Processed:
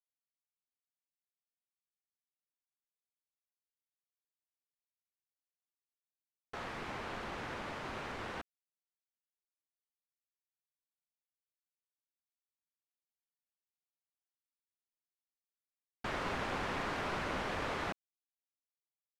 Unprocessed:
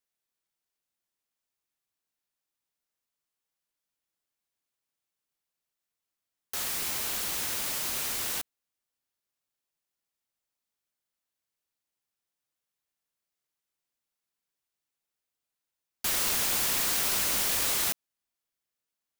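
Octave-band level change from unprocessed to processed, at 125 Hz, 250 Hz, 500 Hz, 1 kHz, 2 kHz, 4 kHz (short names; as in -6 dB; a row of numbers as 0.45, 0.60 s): +1.5, +1.5, +1.5, +0.5, -4.5, -14.5 dB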